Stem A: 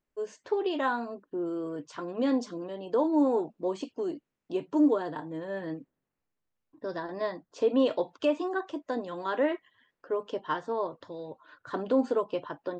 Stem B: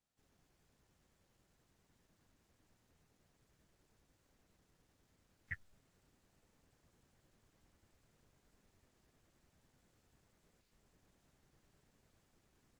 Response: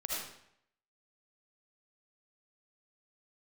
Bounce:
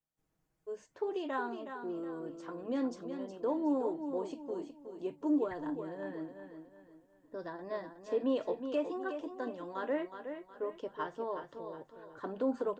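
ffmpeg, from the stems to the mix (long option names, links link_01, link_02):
-filter_complex "[0:a]bandreject=frequency=50:width_type=h:width=6,bandreject=frequency=100:width_type=h:width=6,bandreject=frequency=150:width_type=h:width=6,adynamicequalizer=threshold=0.00891:dfrequency=1600:dqfactor=0.7:tfrequency=1600:tqfactor=0.7:attack=5:release=100:ratio=0.375:range=1.5:mode=boostabove:tftype=highshelf,adelay=500,volume=-7dB,asplit=2[link_01][link_02];[link_02]volume=-8.5dB[link_03];[1:a]aecho=1:1:6.3:0.57,volume=-6dB[link_04];[link_03]aecho=0:1:367|734|1101|1468|1835:1|0.36|0.13|0.0467|0.0168[link_05];[link_01][link_04][link_05]amix=inputs=3:normalize=0,equalizer=frequency=4100:width_type=o:width=2:gain=-7.5"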